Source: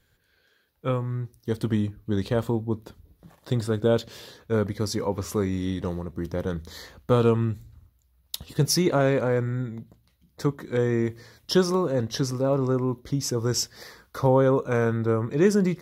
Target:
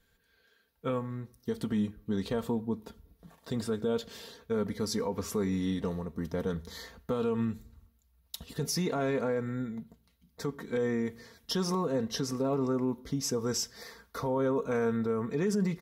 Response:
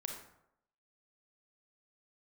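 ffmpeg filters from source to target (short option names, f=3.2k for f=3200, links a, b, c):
-filter_complex "[0:a]aecho=1:1:4.4:0.58,alimiter=limit=-17.5dB:level=0:latency=1:release=71,asplit=2[a][b];[1:a]atrim=start_sample=2205[c];[b][c]afir=irnorm=-1:irlink=0,volume=-17.5dB[d];[a][d]amix=inputs=2:normalize=0,volume=-5dB"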